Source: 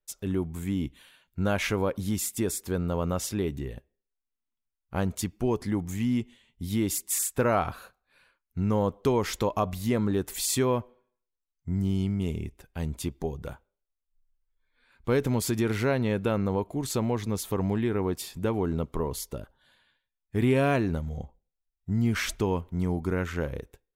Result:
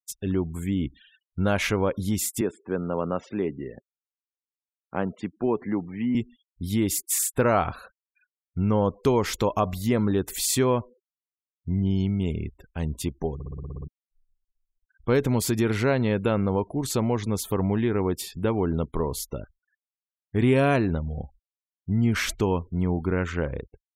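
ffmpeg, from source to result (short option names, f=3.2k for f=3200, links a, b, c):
-filter_complex "[0:a]asettb=1/sr,asplit=3[a][b][c];[a]atrim=end=2.414[d];[b]atrim=start=2.41:end=6.15,asetpts=PTS-STARTPTS,afade=t=in:d=0.004:c=qsin,afade=t=out:st=3.736:d=0.004:c=qsin,acrossover=split=160 2800:gain=0.126 1 0.0708[e][f][g];[e][f][g]amix=inputs=3:normalize=0[h];[c]atrim=start=6.146[i];[d][h]acrossfade=d=0.004:c1=hsin:c2=qsin[j];[j][i]acrossfade=d=0.004:c1=qsin:c2=hsin,asplit=10[k][l][m][n][o][p][q][r][s][t];[k]atrim=end=13.402[u];[l]atrim=start=13.338:end=13.402[v];[m]atrim=start=13.338:end=13.402[w];[n]atrim=start=13.338:end=13.402[x];[o]atrim=start=13.338:end=13.402[y];[p]atrim=start=13.338:end=13.402[z];[q]atrim=start=13.338:end=13.402[aa];[r]atrim=start=13.338:end=13.402[ab];[s]atrim=start=13.338:end=13.402[ac];[t]atrim=start=13.878[ad];[u][v]acrossfade=d=0.004:c1=hsin:c2=hsin[ae];[ae][w]acrossfade=d=0.004:c1=hsin:c2=hsin[af];[af][x]acrossfade=d=0.004:c1=hsin:c2=hsin[ag];[ag][y]acrossfade=d=0.004:c1=hsin:c2=hsin[ah];[ah][z]acrossfade=d=0.004:c1=hsin:c2=hsin[ai];[ai][aa]acrossfade=d=0.004:c1=hsin:c2=hsin[aj];[aj][ab]acrossfade=d=0.004:c1=hsin:c2=hsin[ak];[ak][ac]acrossfade=d=0.004:c1=hsin:c2=hsin[al];[al][ad]acrossfade=d=0.004:c1=hsin:c2=hsin,afftfilt=real='re*gte(hypot(re,im),0.00398)':imag='im*gte(hypot(re,im),0.00398)':win_size=1024:overlap=0.75,volume=3dB"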